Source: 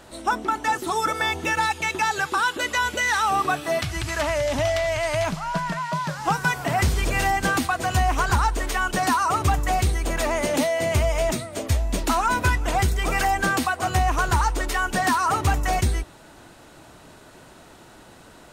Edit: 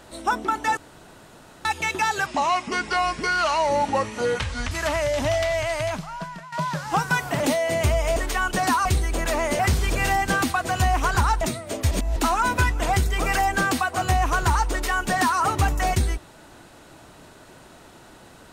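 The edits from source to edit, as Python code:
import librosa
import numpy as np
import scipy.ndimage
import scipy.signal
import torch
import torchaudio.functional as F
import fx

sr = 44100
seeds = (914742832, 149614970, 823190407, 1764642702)

y = fx.edit(x, sr, fx.room_tone_fill(start_s=0.77, length_s=0.88),
    fx.speed_span(start_s=2.26, length_s=1.79, speed=0.73),
    fx.fade_out_to(start_s=4.9, length_s=0.96, floor_db=-15.5),
    fx.swap(start_s=6.74, length_s=1.82, other_s=10.51, other_length_s=0.76),
    fx.cut(start_s=9.25, length_s=0.52),
    fx.reverse_span(start_s=11.77, length_s=0.25), tone=tone)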